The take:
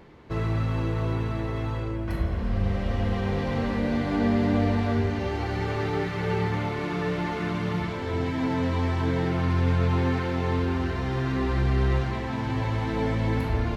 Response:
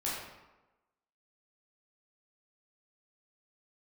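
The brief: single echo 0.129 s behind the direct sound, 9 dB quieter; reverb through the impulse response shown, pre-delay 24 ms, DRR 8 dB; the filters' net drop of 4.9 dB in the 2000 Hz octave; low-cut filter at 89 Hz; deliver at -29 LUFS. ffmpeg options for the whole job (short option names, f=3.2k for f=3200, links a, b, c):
-filter_complex "[0:a]highpass=89,equalizer=f=2k:t=o:g=-6,aecho=1:1:129:0.355,asplit=2[a][b];[1:a]atrim=start_sample=2205,adelay=24[c];[b][c]afir=irnorm=-1:irlink=0,volume=-13dB[d];[a][d]amix=inputs=2:normalize=0,volume=-2dB"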